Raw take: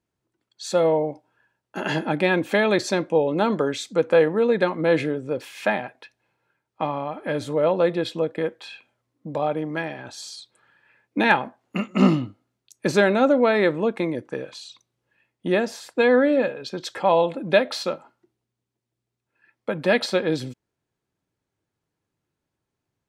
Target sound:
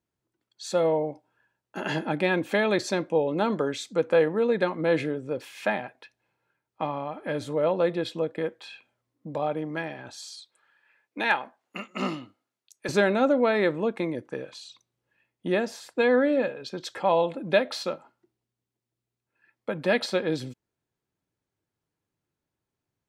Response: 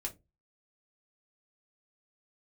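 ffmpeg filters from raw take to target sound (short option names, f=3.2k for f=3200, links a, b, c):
-filter_complex "[0:a]asettb=1/sr,asplit=3[a][b][c];[a]atrim=end=10.174[d];[b]atrim=start=10.17:end=12.89,asetpts=PTS-STARTPTS,afade=t=in:d=0.004:c=qsin,afade=t=out:st=2.716:d=0.004:c=qsin,highpass=f=740:p=1[e];[c]atrim=start=12.886[f];[d][e]acrossfade=d=0.004:c1=hsin:c2=qsin[g];[g][f]acrossfade=d=0.004:c1=qsin:c2=hsin,volume=-4dB"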